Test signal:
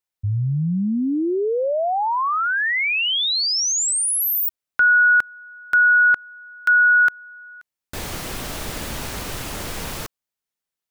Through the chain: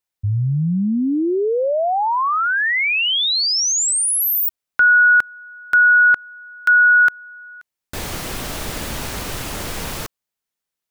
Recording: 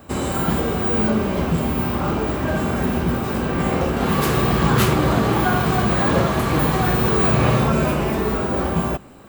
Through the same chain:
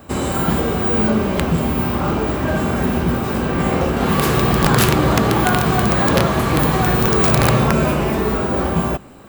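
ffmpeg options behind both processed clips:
ffmpeg -i in.wav -af "aeval=exprs='(mod(2.37*val(0)+1,2)-1)/2.37':channel_layout=same,volume=2.5dB" out.wav

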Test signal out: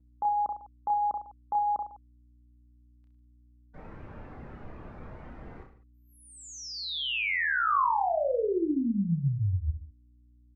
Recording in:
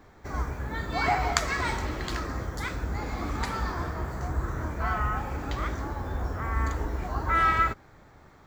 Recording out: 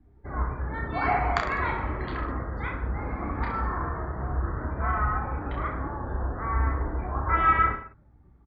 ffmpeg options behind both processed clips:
ffmpeg -i in.wav -af "lowpass=2700,afftdn=noise_reduction=21:noise_floor=-45,adynamicequalizer=threshold=0.00891:dfrequency=1100:dqfactor=3.7:tfrequency=1100:tqfactor=3.7:attack=5:release=100:ratio=0.375:range=2:mode=boostabove:tftype=bell,aeval=exprs='val(0)+0.001*(sin(2*PI*60*n/s)+sin(2*PI*2*60*n/s)/2+sin(2*PI*3*60*n/s)/3+sin(2*PI*4*60*n/s)/4+sin(2*PI*5*60*n/s)/5)':channel_layout=same,aecho=1:1:30|64.5|104.2|149.8|202.3:0.631|0.398|0.251|0.158|0.1,volume=-1.5dB" out.wav

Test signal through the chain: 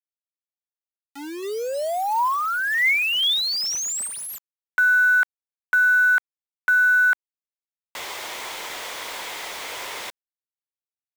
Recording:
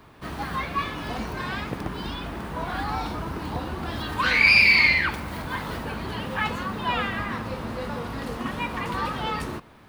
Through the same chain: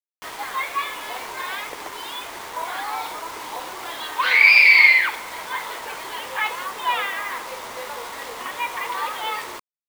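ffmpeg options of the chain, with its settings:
ffmpeg -i in.wav -af "highpass=frequency=410:width=0.5412,highpass=frequency=410:width=1.3066,equalizer=frequency=970:width_type=q:width=4:gain=6,equalizer=frequency=2100:width_type=q:width=4:gain=8,equalizer=frequency=3400:width_type=q:width=4:gain=6,equalizer=frequency=9500:width_type=q:width=4:gain=-7,lowpass=frequency=9800:width=0.5412,lowpass=frequency=9800:width=1.3066,acrusher=bits=5:mix=0:aa=0.000001,volume=-1dB" out.wav

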